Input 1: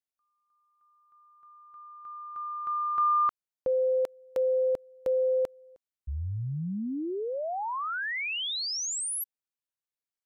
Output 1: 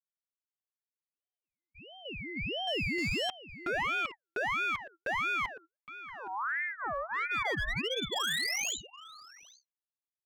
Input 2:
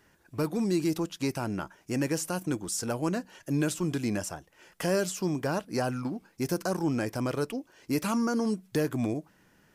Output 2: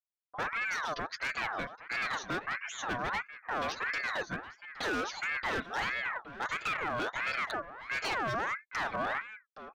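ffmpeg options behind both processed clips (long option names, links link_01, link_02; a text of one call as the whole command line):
ffmpeg -i in.wav -filter_complex "[0:a]bandreject=frequency=1800:width=5.4,afftdn=noise_reduction=18:noise_floor=-46,highpass=frequency=100:width=0.5412,highpass=frequency=100:width=1.3066,agate=range=-48dB:threshold=-49dB:ratio=16:release=102:detection=peak,equalizer=frequency=230:width=5.9:gain=5.5,aecho=1:1:7.3:0.91,crystalizer=i=1:c=0,aresample=11025,asoftclip=type=tanh:threshold=-25.5dB,aresample=44100,equalizer=frequency=250:width_type=o:width=0.67:gain=-4,equalizer=frequency=630:width_type=o:width=0.67:gain=9,equalizer=frequency=2500:width_type=o:width=0.67:gain=10,volume=27.5dB,asoftclip=hard,volume=-27.5dB,asplit=2[link_01][link_02];[link_02]adelay=816.3,volume=-13dB,highshelf=frequency=4000:gain=-18.4[link_03];[link_01][link_03]amix=inputs=2:normalize=0,aeval=exprs='val(0)*sin(2*PI*1400*n/s+1400*0.4/1.5*sin(2*PI*1.5*n/s))':channel_layout=same" out.wav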